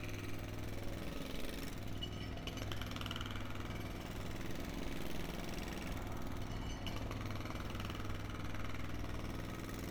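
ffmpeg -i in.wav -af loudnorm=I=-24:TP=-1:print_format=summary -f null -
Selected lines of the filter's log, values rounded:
Input Integrated:    -44.7 LUFS
Input True Peak:     -24.2 dBTP
Input LRA:             0.4 LU
Input Threshold:     -54.7 LUFS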